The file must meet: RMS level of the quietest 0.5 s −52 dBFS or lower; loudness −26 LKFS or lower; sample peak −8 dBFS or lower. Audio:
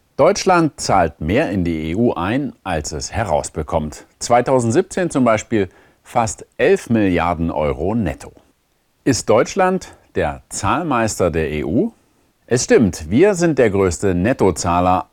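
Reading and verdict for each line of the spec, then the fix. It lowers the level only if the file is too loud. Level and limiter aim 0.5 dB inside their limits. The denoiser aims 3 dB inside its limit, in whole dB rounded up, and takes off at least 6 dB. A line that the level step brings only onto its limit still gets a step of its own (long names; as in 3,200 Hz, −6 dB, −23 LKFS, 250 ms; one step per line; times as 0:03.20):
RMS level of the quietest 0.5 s −62 dBFS: in spec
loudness −17.5 LKFS: out of spec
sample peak −2.5 dBFS: out of spec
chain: level −9 dB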